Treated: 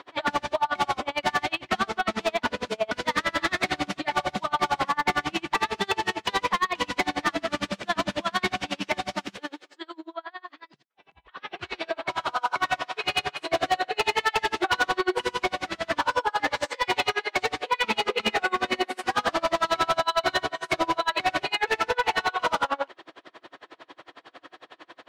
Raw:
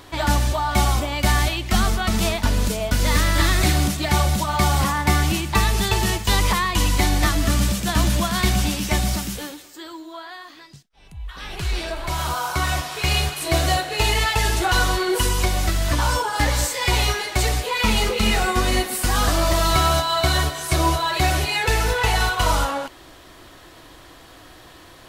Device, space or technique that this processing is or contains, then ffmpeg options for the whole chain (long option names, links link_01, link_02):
helicopter radio: -filter_complex "[0:a]asettb=1/sr,asplit=3[link_01][link_02][link_03];[link_01]atrim=end=9.974[link_04];[link_02]atrim=start=9.97:end=11.69,asetpts=PTS-STARTPTS,afade=type=in:duration=0.004:curve=qsin,afade=type=out:start_time=1.716:duration=0.004:curve=qsin,highshelf=frequency=3900:gain=-6[link_05];[link_03]atrim=start=11.686[link_06];[link_04][link_05]acrossfade=duration=0.004:curve1=hsin:curve2=qsin[link_07];[link_07][link_06]acrossfade=duration=0.004:curve1=qsin:curve2=hsin,highpass=360,lowpass=3000,aeval=exprs='val(0)*pow(10,-33*(0.5-0.5*cos(2*PI*11*n/s))/20)':channel_layout=same,asoftclip=type=hard:threshold=-23dB,volume=6dB"